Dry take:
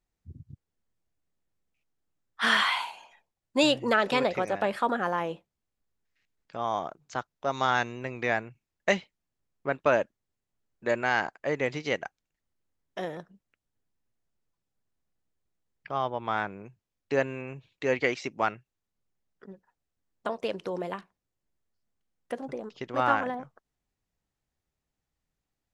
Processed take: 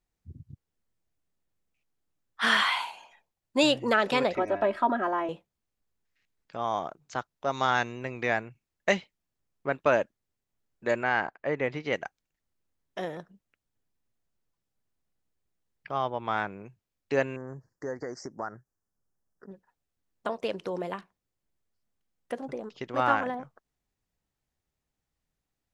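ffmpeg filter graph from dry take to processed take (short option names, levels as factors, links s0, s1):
-filter_complex "[0:a]asettb=1/sr,asplit=3[s0][s1][s2];[s0]atrim=end=4.354[s3];[s1]atrim=start=4.35:end=5.29,asetpts=PTS-STARTPTS,afade=t=in:d=0.004:c=qsin,afade=t=out:st=0.936:d=0.004:c=qsin,lowpass=f=1300:p=1,aecho=1:1:3.1:0.89,atrim=end_sample=41454[s4];[s2]atrim=start=5.286[s5];[s3][s4]acrossfade=d=0.004:c1=hsin:c2=qsin[s6];[s6][s5]acrossfade=d=0.004:c1=qsin:c2=hsin,asettb=1/sr,asplit=3[s7][s8][s9];[s7]atrim=end=11.034[s10];[s8]atrim=start=11.03:end=11.93,asetpts=PTS-STARTPTS,afade=t=in:d=0.004:c=qsin,afade=t=out:st=0.896:d=0.004:c=qsin,lowpass=2200,aemphasis=mode=production:type=50fm[s11];[s9]atrim=start=11.926[s12];[s10][s11]acrossfade=d=0.004:c1=hsin:c2=qsin[s13];[s13][s12]acrossfade=d=0.004:c1=qsin:c2=hsin,asettb=1/sr,asplit=3[s14][s15][s16];[s14]atrim=end=17.364[s17];[s15]atrim=start=17.36:end=19.51,asetpts=PTS-STARTPTS,afade=t=in:d=0.004:c=qsin,afade=t=out:st=2.146:d=0.004:c=qsin,acompressor=threshold=0.0224:ratio=2.5:attack=3.2:release=140:knee=1:detection=peak,asuperstop=centerf=3000:order=12:qfactor=0.97[s18];[s16]atrim=start=19.506[s19];[s17][s18]acrossfade=d=0.004:c1=hsin:c2=qsin[s20];[s20][s19]acrossfade=d=0.004:c1=qsin:c2=hsin"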